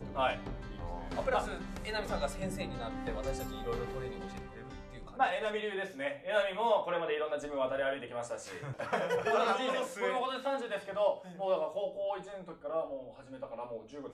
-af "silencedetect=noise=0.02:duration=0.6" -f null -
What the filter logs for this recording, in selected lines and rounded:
silence_start: 4.38
silence_end: 5.20 | silence_duration: 0.82